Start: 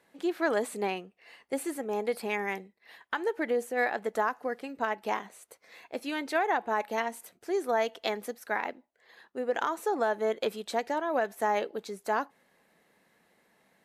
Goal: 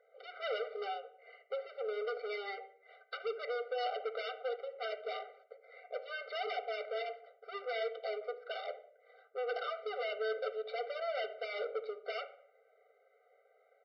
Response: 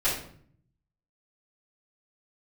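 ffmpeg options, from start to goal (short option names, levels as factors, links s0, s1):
-filter_complex "[0:a]highpass=180,highshelf=f=3200:g=-4,bandreject=f=2800:w=16,aeval=exprs='(mod(10.6*val(0)+1,2)-1)/10.6':c=same,adynamicsmooth=sensitivity=6:basefreq=1800,asoftclip=type=hard:threshold=0.0126,aresample=11025,aresample=44100,asplit=2[s0][s1];[1:a]atrim=start_sample=2205,lowpass=2700[s2];[s1][s2]afir=irnorm=-1:irlink=0,volume=0.141[s3];[s0][s3]amix=inputs=2:normalize=0,afftfilt=real='re*eq(mod(floor(b*sr/1024/390),2),1)':imag='im*eq(mod(floor(b*sr/1024/390),2),1)':win_size=1024:overlap=0.75,volume=1.5"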